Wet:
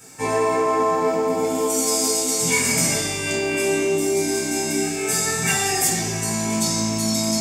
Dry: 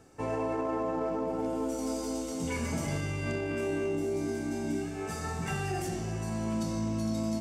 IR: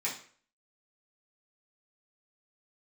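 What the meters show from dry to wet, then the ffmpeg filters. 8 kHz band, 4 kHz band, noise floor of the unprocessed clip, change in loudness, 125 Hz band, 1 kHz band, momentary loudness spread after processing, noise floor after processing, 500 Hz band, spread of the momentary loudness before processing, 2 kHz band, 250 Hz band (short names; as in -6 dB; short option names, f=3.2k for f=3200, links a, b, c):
+23.5 dB, +20.5 dB, -37 dBFS, +12.5 dB, +4.5 dB, +13.0 dB, 4 LU, -26 dBFS, +11.0 dB, 3 LU, +15.0 dB, +7.0 dB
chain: -filter_complex "[0:a]crystalizer=i=5.5:c=0[a];[1:a]atrim=start_sample=2205[b];[a][b]afir=irnorm=-1:irlink=0,volume=5dB"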